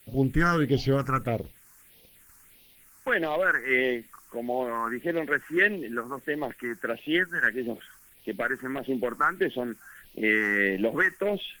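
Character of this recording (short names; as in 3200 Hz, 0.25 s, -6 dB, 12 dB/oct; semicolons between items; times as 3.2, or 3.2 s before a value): a quantiser's noise floor 10-bit, dither triangular; phasing stages 4, 1.6 Hz, lowest notch 560–1400 Hz; Opus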